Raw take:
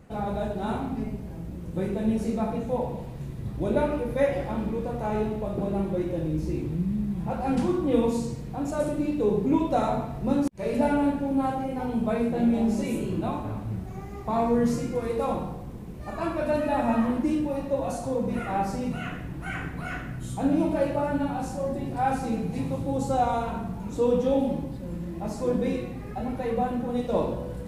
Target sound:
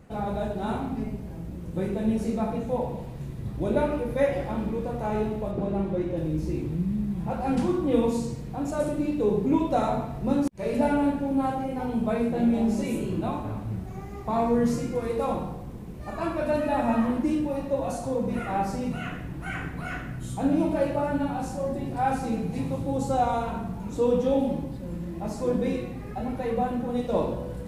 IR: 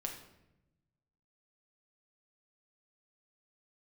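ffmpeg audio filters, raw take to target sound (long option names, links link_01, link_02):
-filter_complex "[0:a]asettb=1/sr,asplit=3[link_01][link_02][link_03];[link_01]atrim=end=5.514[link_04];[link_02]atrim=start=5.51:end=6.17,asetpts=PTS-STARTPTS,afade=type=in:duration=0.004:curve=qsin,afade=type=out:start_time=0.656:duration=0.004:curve=qsin,highshelf=frequency=7300:gain=-11[link_05];[link_03]atrim=start=6.166[link_06];[link_04][link_05]acrossfade=duration=0.004:curve1=hsin:curve2=qsin[link_07];[link_07][link_06]acrossfade=duration=0.004:curve1=qsin:curve2=hsin"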